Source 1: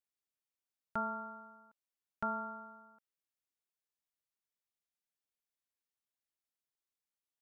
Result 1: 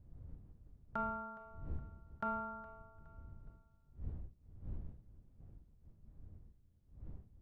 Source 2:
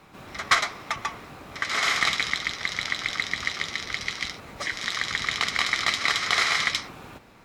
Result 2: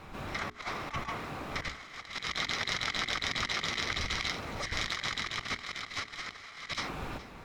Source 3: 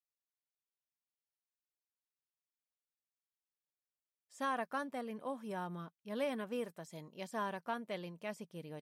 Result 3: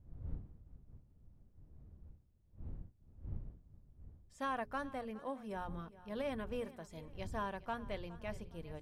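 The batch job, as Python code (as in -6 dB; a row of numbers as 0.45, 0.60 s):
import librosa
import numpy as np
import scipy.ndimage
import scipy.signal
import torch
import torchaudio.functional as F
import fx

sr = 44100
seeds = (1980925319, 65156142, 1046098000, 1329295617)

p1 = fx.diode_clip(x, sr, knee_db=-17.5)
p2 = fx.dmg_wind(p1, sr, seeds[0], corner_hz=83.0, level_db=-49.0)
p3 = fx.high_shelf(p2, sr, hz=5700.0, db=-6.5)
p4 = fx.over_compress(p3, sr, threshold_db=-35.0, ratio=-0.5)
p5 = fx.hum_notches(p4, sr, base_hz=60, count=7)
p6 = p5 + fx.echo_feedback(p5, sr, ms=416, feedback_pct=38, wet_db=-18.0, dry=0)
y = F.gain(torch.from_numpy(p6), -1.0).numpy()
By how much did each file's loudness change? -6.0, -9.0, -2.5 LU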